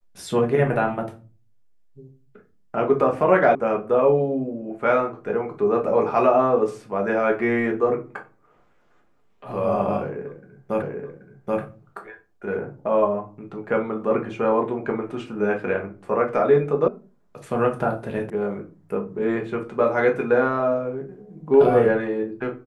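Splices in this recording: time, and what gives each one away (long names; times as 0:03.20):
0:03.55: cut off before it has died away
0:10.82: the same again, the last 0.78 s
0:16.88: cut off before it has died away
0:18.30: cut off before it has died away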